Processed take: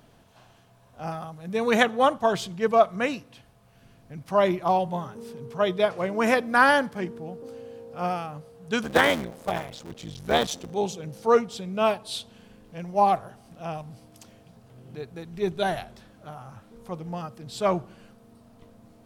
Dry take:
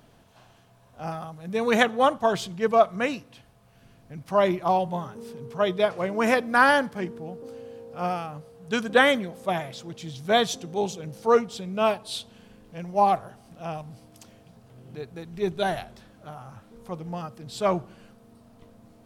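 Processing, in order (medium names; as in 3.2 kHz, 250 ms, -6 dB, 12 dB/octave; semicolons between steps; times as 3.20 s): 8.83–10.71 s: cycle switcher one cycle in 3, muted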